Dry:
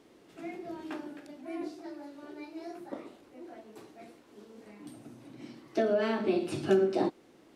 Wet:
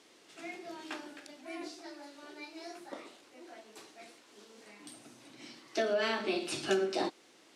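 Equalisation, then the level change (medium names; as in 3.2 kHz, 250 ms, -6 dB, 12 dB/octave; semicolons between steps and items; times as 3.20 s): low-pass 7.3 kHz 12 dB/octave; tilt EQ +4 dB/octave; 0.0 dB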